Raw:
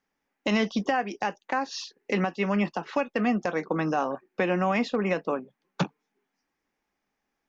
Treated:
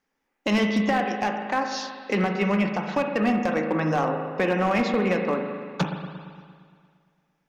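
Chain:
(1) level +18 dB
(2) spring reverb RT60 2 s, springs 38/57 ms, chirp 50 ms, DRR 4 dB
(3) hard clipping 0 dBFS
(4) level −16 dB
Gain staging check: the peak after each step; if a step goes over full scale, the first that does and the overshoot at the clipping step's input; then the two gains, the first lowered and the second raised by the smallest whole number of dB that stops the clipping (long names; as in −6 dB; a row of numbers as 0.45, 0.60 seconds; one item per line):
+3.5, +7.0, 0.0, −16.0 dBFS
step 1, 7.0 dB
step 1 +11 dB, step 4 −9 dB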